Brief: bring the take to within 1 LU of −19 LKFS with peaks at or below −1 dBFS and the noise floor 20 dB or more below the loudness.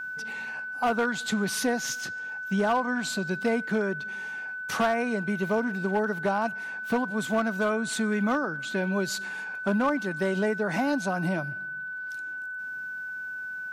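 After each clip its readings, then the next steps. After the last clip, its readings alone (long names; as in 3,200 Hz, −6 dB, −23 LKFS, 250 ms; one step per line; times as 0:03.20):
share of clipped samples 0.6%; peaks flattened at −18.5 dBFS; interfering tone 1,500 Hz; level of the tone −33 dBFS; integrated loudness −28.5 LKFS; sample peak −18.5 dBFS; target loudness −19.0 LKFS
→ clipped peaks rebuilt −18.5 dBFS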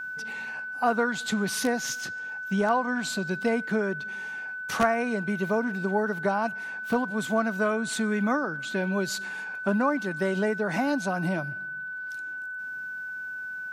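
share of clipped samples 0.0%; interfering tone 1,500 Hz; level of the tone −33 dBFS
→ notch filter 1,500 Hz, Q 30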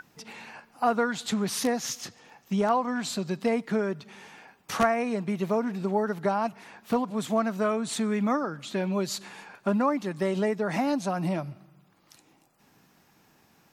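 interfering tone none found; integrated loudness −28.5 LKFS; sample peak −9.5 dBFS; target loudness −19.0 LKFS
→ level +9.5 dB
brickwall limiter −1 dBFS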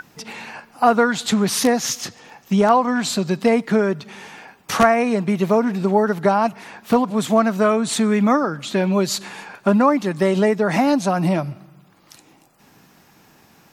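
integrated loudness −19.0 LKFS; sample peak −1.0 dBFS; background noise floor −54 dBFS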